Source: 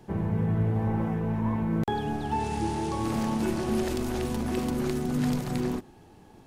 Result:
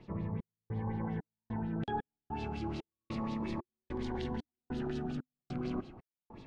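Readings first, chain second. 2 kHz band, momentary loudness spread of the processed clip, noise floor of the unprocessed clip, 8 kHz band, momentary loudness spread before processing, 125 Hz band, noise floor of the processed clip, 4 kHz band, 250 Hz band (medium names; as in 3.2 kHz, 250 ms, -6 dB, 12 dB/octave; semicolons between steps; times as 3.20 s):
-9.5 dB, 7 LU, -53 dBFS, under -20 dB, 3 LU, -11.5 dB, under -85 dBFS, -10.5 dB, -10.5 dB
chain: low-pass 11 kHz; reverse; compression 6:1, threshold -36 dBFS, peak gain reduction 14 dB; reverse; LFO low-pass sine 5.5 Hz 950–4300 Hz; trance gate "xxxx...x" 150 bpm -60 dB; Shepard-style phaser falling 0.32 Hz; trim +2 dB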